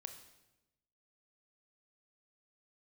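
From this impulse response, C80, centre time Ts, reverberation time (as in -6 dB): 11.5 dB, 16 ms, 1.0 s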